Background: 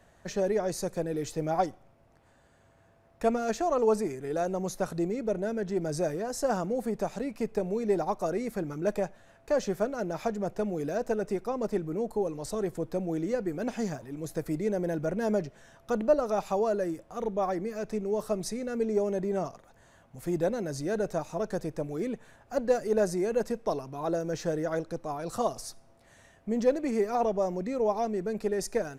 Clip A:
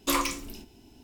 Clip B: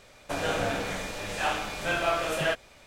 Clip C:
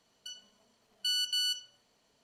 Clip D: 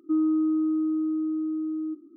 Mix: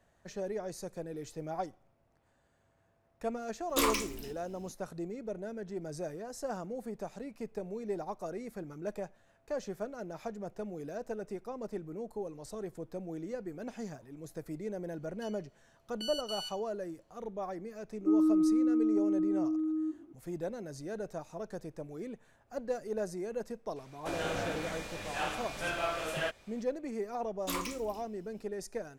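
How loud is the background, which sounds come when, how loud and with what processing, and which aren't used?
background -9.5 dB
3.69 s: add A -3 dB
14.96 s: add C -10 dB + vibrato 1.3 Hz 5 cents
17.97 s: add D -2.5 dB
23.76 s: add B -7 dB
27.40 s: add A -10 dB

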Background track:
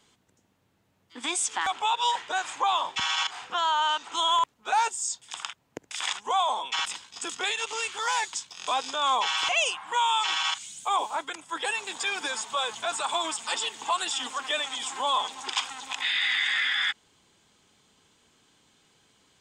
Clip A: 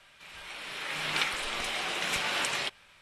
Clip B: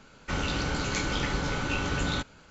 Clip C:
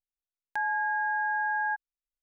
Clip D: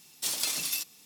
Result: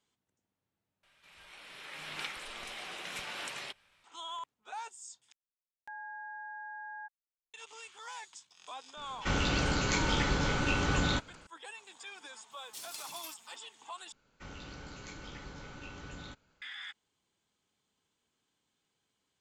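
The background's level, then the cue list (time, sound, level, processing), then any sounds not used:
background track -18 dB
1.03 s: replace with A -10.5 dB
5.32 s: replace with C -15.5 dB
8.97 s: add B -0.5 dB
12.51 s: add D -15 dB
14.12 s: replace with B -17.5 dB

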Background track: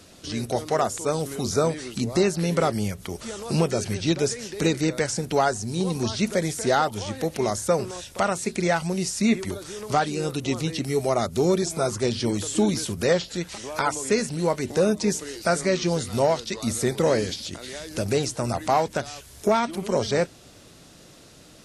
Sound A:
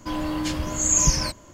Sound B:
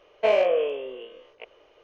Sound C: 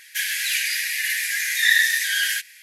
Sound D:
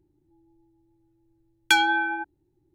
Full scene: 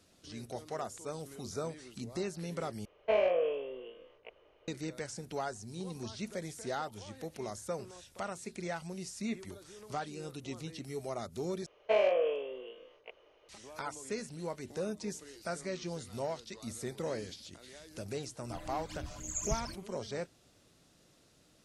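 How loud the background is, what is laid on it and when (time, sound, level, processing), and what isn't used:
background track -16 dB
2.85 s: replace with B -8 dB + tone controls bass +7 dB, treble -7 dB
11.66 s: replace with B -7 dB
18.44 s: add A -16 dB + phase shifter stages 12, 4 Hz, lowest notch 290–1500 Hz
not used: C, D

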